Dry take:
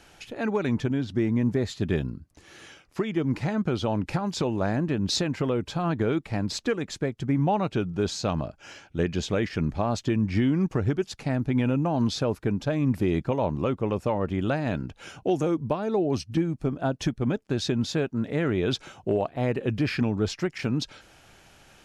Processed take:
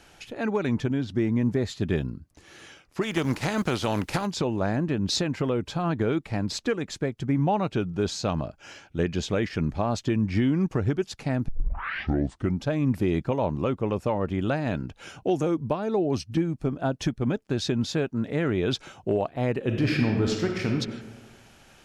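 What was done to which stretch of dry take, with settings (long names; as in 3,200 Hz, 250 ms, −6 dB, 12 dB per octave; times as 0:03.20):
0:03.01–0:04.25: compressing power law on the bin magnitudes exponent 0.64
0:11.48: tape start 1.16 s
0:19.63–0:20.72: thrown reverb, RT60 1.4 s, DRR 2 dB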